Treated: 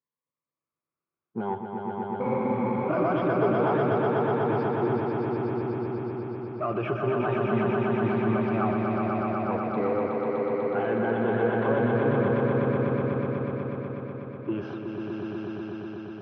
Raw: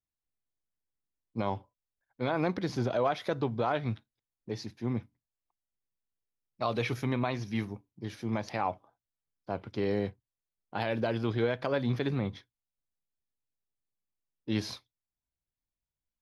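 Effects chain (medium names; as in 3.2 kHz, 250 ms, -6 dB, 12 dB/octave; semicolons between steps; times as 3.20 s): drifting ripple filter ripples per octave 1, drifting +0.52 Hz, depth 15 dB; peak limiter -24 dBFS, peak gain reduction 11 dB; waveshaping leveller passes 1; cabinet simulation 160–2100 Hz, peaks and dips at 270 Hz -5 dB, 390 Hz +5 dB, 700 Hz -4 dB, 1.2 kHz +5 dB, 1.9 kHz -8 dB; on a send: echo with a slow build-up 123 ms, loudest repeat 5, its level -4 dB; on the sum: spectral freeze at 2.26 s, 0.64 s; trim +3.5 dB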